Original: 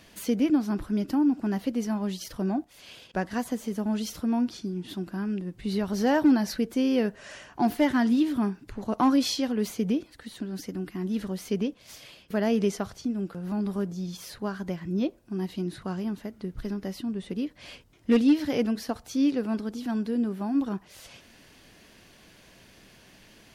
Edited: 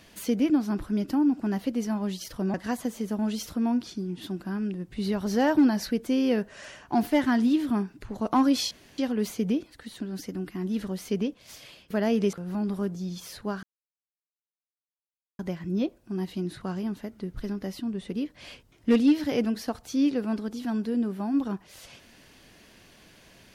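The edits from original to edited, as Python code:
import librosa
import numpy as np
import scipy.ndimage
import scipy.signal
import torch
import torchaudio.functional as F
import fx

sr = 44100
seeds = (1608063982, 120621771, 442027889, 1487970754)

y = fx.edit(x, sr, fx.cut(start_s=2.54, length_s=0.67),
    fx.insert_room_tone(at_s=9.38, length_s=0.27),
    fx.cut(start_s=12.73, length_s=0.57),
    fx.insert_silence(at_s=14.6, length_s=1.76), tone=tone)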